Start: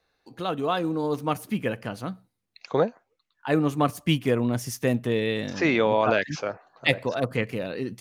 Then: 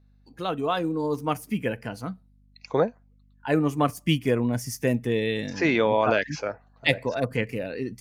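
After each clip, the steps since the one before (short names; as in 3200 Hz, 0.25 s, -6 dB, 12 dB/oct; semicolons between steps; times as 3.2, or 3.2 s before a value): spectral noise reduction 9 dB; hum 50 Hz, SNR 32 dB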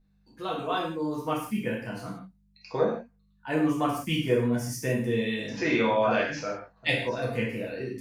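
non-linear reverb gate 0.2 s falling, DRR -5 dB; gain -8 dB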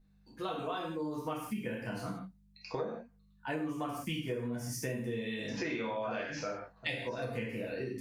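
compressor 6:1, threshold -34 dBFS, peak gain reduction 14.5 dB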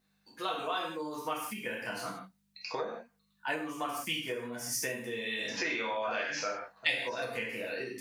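HPF 1100 Hz 6 dB/oct; gain +8 dB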